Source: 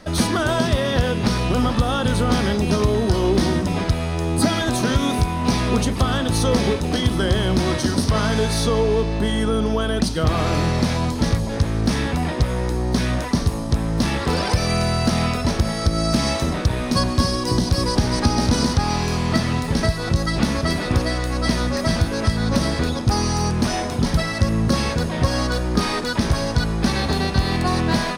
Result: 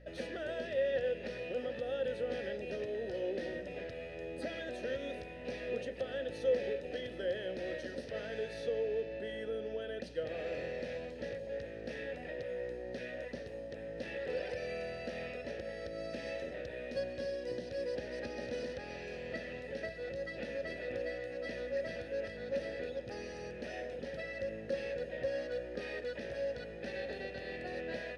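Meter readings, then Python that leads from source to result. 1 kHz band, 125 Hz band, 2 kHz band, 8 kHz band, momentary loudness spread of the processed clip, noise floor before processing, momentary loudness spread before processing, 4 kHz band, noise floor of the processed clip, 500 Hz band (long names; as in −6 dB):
−27.0 dB, −32.0 dB, −16.0 dB, below −30 dB, 6 LU, −25 dBFS, 3 LU, −24.5 dB, −46 dBFS, −11.5 dB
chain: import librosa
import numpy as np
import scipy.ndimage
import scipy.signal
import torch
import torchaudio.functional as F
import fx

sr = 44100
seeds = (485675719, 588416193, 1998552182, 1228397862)

y = fx.vowel_filter(x, sr, vowel='e')
y = fx.add_hum(y, sr, base_hz=60, snr_db=18)
y = F.gain(torch.from_numpy(y), -5.5).numpy()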